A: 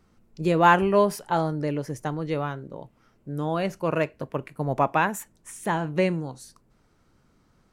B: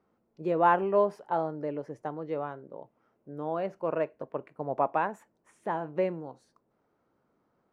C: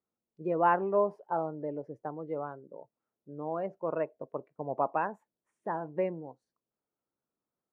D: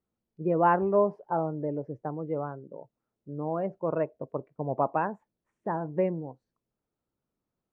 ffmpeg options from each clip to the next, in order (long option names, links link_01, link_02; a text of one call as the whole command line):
ffmpeg -i in.wav -af "bandpass=frequency=610:width_type=q:width=0.89:csg=0,volume=-3dB" out.wav
ffmpeg -i in.wav -af "afftdn=noise_reduction=17:noise_floor=-42,volume=-2.5dB" out.wav
ffmpeg -i in.wav -af "aemphasis=mode=reproduction:type=bsi,volume=2dB" out.wav